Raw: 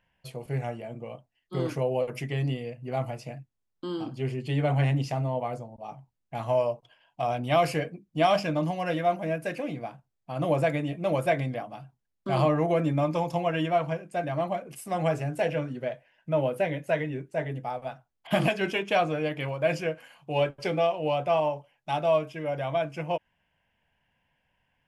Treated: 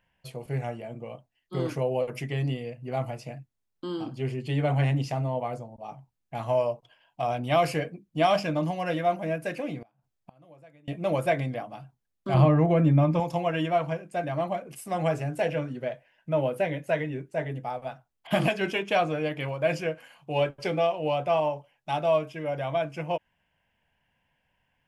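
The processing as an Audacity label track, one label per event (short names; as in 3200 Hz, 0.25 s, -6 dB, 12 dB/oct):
9.820000	10.880000	flipped gate shuts at -32 dBFS, range -28 dB
12.340000	13.200000	tone controls bass +9 dB, treble -9 dB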